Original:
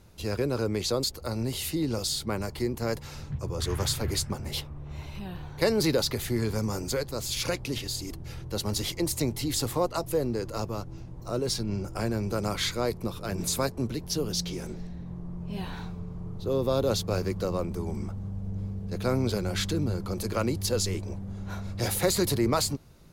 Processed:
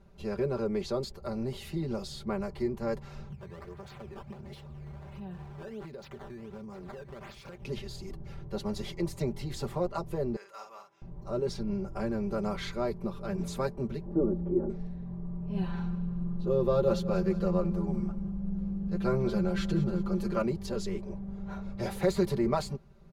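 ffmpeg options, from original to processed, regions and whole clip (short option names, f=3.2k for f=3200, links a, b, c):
-filter_complex "[0:a]asettb=1/sr,asplit=3[a][b][c];[a]atrim=end=3.294[d];[b]atrim=start=3.29:end=7.64,asetpts=PTS-STARTPTS,afade=t=in:d=0.004:c=qsin,afade=t=out:st=4.346:d=0.004:c=qsin,highpass=45,acompressor=threshold=-36dB:ratio=16:attack=3.2:release=140:knee=1:detection=peak,acrusher=samples=12:mix=1:aa=0.000001:lfo=1:lforange=19.2:lforate=1.4[e];[c]atrim=start=7.636[f];[d][e]acrossfade=d=0.004:c1=hsin:c2=qsin[g];[g][f]acrossfade=d=0.004:c1=qsin:c2=hsin,asettb=1/sr,asplit=3[h][i][j];[h]atrim=end=10.364[k];[i]atrim=start=10.36:end=11.02,asetpts=PTS-STARTPTS,afade=t=in:d=0.004:c=qsin,afade=t=out:st=0.656:d=0.004:c=qsin,highpass=1.3k,bandreject=f=4.4k:w=5.5,asplit=2[l][m];[m]adelay=49,volume=-5.5dB[n];[l][n]amix=inputs=2:normalize=0,atrim=end_sample=29106[o];[j]atrim=start=11.016[p];[k][o]acrossfade=d=0.004:c1=hsin:c2=qsin[q];[q][p]acrossfade=d=0.004:c1=qsin:c2=hsin,asettb=1/sr,asplit=3[r][s][t];[r]atrim=end=14.064[u];[s]atrim=start=14.06:end=14.7,asetpts=PTS-STARTPTS,afade=t=in:d=0.004:c=qsin,afade=t=out:st=0.636:d=0.004:c=qsin,lowpass=f=1.2k:w=0.5412,lowpass=f=1.2k:w=1.3066,equalizer=f=320:w=1.5:g=15,aecho=1:1:3.5:0.53,atrim=end_sample=28224[v];[t]atrim=start=14.696[w];[u][v]acrossfade=d=0.004:c1=hsin:c2=qsin[x];[x][w]acrossfade=d=0.004:c1=qsin:c2=hsin,asettb=1/sr,asplit=3[y][z][aa];[y]atrim=end=15.554[ab];[z]atrim=start=15.55:end=20.42,asetpts=PTS-STARTPTS,afade=t=in:d=0.004:c=qsin,afade=t=out:st=4.866:d=0.004:c=qsin,aecho=1:1:5.8:0.64,atrim=end_sample=214767,aecho=1:1:189|378|567|756:0.158|0.0666|0.028|0.0117,atrim=end_sample=214767[ac];[aa]atrim=start=20.416[ad];[ab][ac]acrossfade=d=0.004:c1=hsin:c2=qsin[ae];[ae][ad]acrossfade=d=0.004:c1=qsin:c2=hsin,lowpass=f=1.1k:p=1,equalizer=f=280:w=3.9:g=-6.5,aecho=1:1:5.1:0.82,volume=-3dB"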